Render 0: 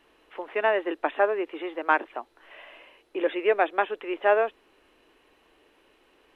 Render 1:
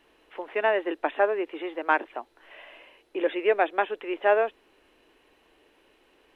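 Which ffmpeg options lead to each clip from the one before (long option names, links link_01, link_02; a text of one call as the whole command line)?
ffmpeg -i in.wav -af "equalizer=frequency=1200:width=3.7:gain=-3" out.wav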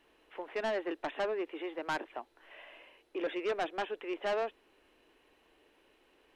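ffmpeg -i in.wav -af "asoftclip=type=tanh:threshold=-23dB,volume=-5dB" out.wav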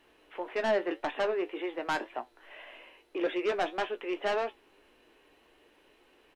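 ffmpeg -i in.wav -filter_complex "[0:a]asplit=2[link_01][link_02];[link_02]adelay=17,volume=-10.5dB[link_03];[link_01][link_03]amix=inputs=2:normalize=0,flanger=delay=7.8:depth=2.4:regen=76:speed=1.8:shape=sinusoidal,volume=8dB" out.wav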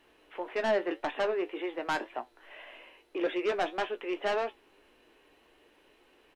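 ffmpeg -i in.wav -af anull out.wav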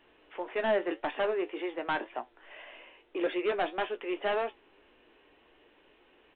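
ffmpeg -i in.wav -ar 8000 -c:a pcm_mulaw out.wav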